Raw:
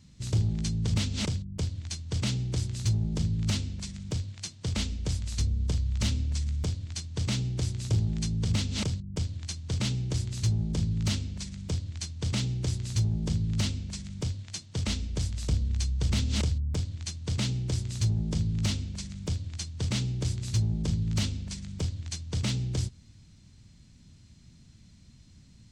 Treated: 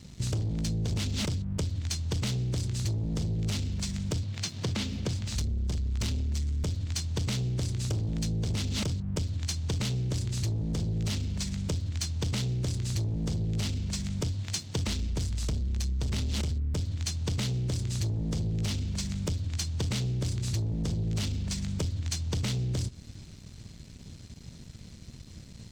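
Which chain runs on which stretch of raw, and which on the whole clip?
0:04.23–0:05.36: high-pass filter 93 Hz 24 dB per octave + upward compression, threshold −38 dBFS + high-frequency loss of the air 68 metres
whole clip: leveller curve on the samples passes 2; downward compressor, threshold −31 dBFS; level +2.5 dB

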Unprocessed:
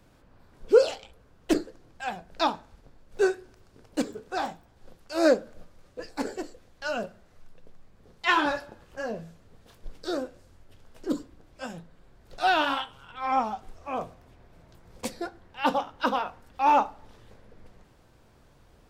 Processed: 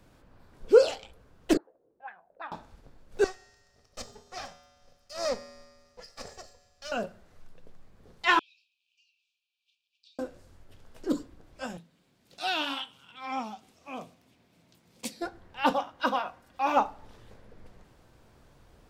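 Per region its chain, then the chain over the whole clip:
0:01.57–0:02.52: high-frequency loss of the air 390 metres + envelope filter 340–1,800 Hz, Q 4.4, up, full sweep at −29.5 dBFS
0:03.24–0:06.92: lower of the sound and its delayed copy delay 1.6 ms + parametric band 5,400 Hz +12.5 dB 0.7 octaves + tuned comb filter 81 Hz, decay 1.5 s, harmonics odd, mix 70%
0:08.39–0:10.19: downward compressor 2.5 to 1, threshold −36 dBFS + linear-phase brick-wall high-pass 2,300 Hz + head-to-tape spacing loss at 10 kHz 33 dB
0:11.77–0:15.22: high-pass filter 220 Hz + flat-topped bell 790 Hz −9.5 dB 2.7 octaves
0:15.73–0:16.77: low-shelf EQ 180 Hz −8.5 dB + notch comb filter 440 Hz
whole clip: no processing

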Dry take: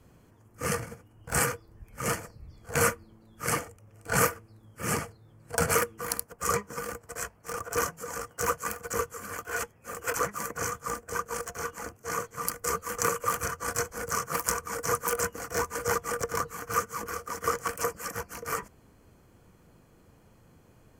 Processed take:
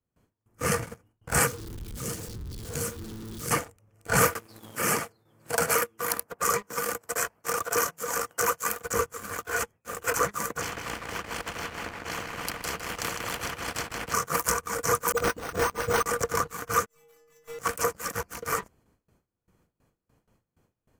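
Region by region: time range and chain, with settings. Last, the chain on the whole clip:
0:01.47–0:03.51: converter with a step at zero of −34.5 dBFS + flat-topped bell 1,200 Hz −10.5 dB 2.5 octaves + downward compressor 2 to 1, threshold −37 dBFS
0:04.35–0:08.83: high-pass filter 280 Hz 6 dB per octave + parametric band 13,000 Hz +5 dB 0.2 octaves + multiband upward and downward compressor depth 70%
0:10.61–0:14.14: high-frequency loss of the air 480 metres + repeating echo 156 ms, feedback 35%, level −9 dB + every bin compressed towards the loudest bin 4 to 1
0:15.12–0:16.06: all-pass dispersion highs, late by 51 ms, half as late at 450 Hz + bad sample-rate conversion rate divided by 6×, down none, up hold
0:16.86–0:17.59: lower of the sound and its delayed copy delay 4.4 ms + stiff-string resonator 150 Hz, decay 0.82 s, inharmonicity 0.008
whole clip: noise gate with hold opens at −47 dBFS; leveller curve on the samples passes 2; level −4 dB

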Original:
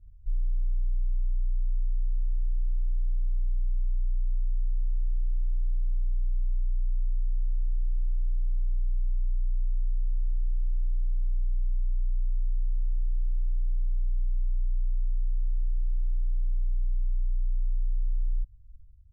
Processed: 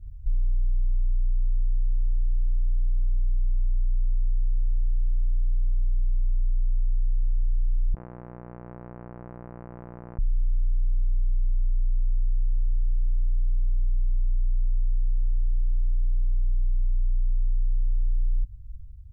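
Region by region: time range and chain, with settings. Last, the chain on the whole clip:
0:07.94–0:10.19: low shelf with overshoot 130 Hz −12.5 dB, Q 3 + saturating transformer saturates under 710 Hz
whole clip: parametric band 90 Hz +10.5 dB 2.4 octaves; comb filter 5.9 ms, depth 33%; brickwall limiter −23 dBFS; level +5 dB

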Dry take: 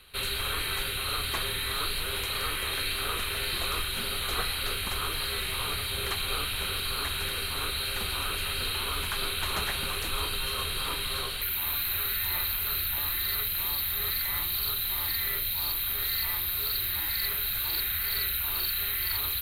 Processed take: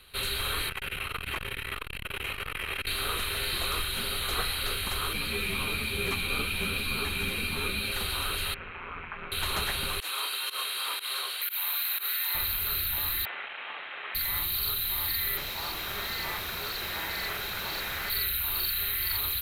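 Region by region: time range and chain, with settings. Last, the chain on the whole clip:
0:00.69–0:02.87: high shelf with overshoot 3,300 Hz −6.5 dB, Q 3 + saturating transformer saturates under 440 Hz
0:05.13–0:07.92: hollow resonant body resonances 210/2,400 Hz, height 15 dB, ringing for 25 ms + string-ensemble chorus
0:08.54–0:09.32: elliptic low-pass filter 2,400 Hz, stop band 60 dB + low-shelf EQ 330 Hz −7 dB + amplitude modulation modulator 170 Hz, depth 55%
0:10.00–0:12.35: high-pass filter 680 Hz + fake sidechain pumping 121 BPM, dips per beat 1, −20 dB, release 94 ms
0:13.25–0:14.15: linear delta modulator 16 kbit/s, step −31 dBFS + high-pass filter 700 Hz + notch filter 980 Hz, Q 17
0:15.37–0:18.10: mid-hump overdrive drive 25 dB, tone 1,100 Hz, clips at −15 dBFS + notch filter 270 Hz, Q 5.7
whole clip: no processing

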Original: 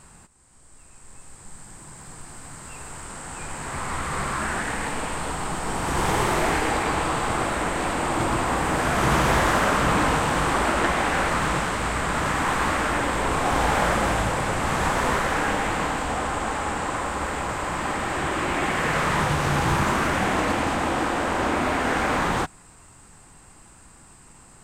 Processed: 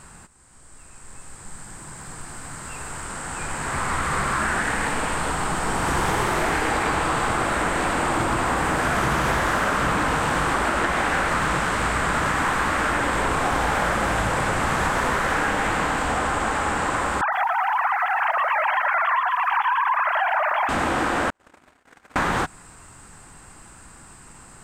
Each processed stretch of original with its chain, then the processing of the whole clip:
0:17.21–0:20.69: three sine waves on the formant tracks + dynamic equaliser 1,000 Hz, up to +4 dB, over −32 dBFS, Q 2.9 + feedback echo at a low word length 115 ms, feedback 35%, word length 8 bits, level −8.5 dB
0:21.30–0:22.16: noise gate −19 dBFS, range −55 dB + high-shelf EQ 3,900 Hz +10.5 dB
whole clip: parametric band 1,500 Hz +4 dB 0.77 octaves; downward compressor, threshold −22 dBFS; level +3.5 dB

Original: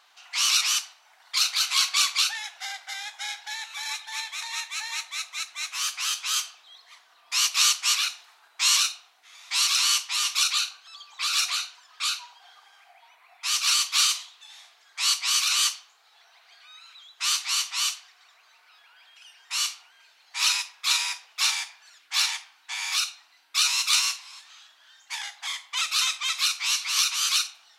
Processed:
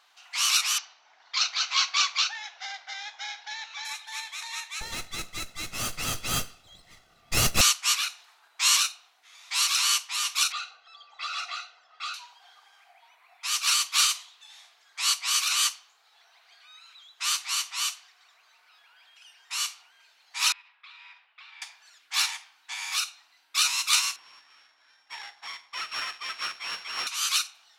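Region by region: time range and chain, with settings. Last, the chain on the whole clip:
0:00.78–0:03.85: Butterworth low-pass 6,400 Hz 48 dB per octave + low-shelf EQ 460 Hz +8 dB
0:04.81–0:07.61: lower of the sound and its delayed copy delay 1.5 ms + low-shelf EQ 420 Hz +11.5 dB
0:10.52–0:12.14: low-pass filter 5,300 Hz + spectral tilt −3.5 dB per octave + comb filter 1.5 ms, depth 79%
0:20.52–0:21.62: downward compressor, threshold −33 dBFS + resonant band-pass 2,600 Hz, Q 0.64 + high-frequency loss of the air 430 metres
0:24.16–0:27.07: samples sorted by size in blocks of 8 samples + high-frequency loss of the air 110 metres
whole clip: dynamic equaliser 4,400 Hz, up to −4 dB, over −33 dBFS, Q 0.81; expander for the loud parts 1.5 to 1, over −33 dBFS; level +3.5 dB

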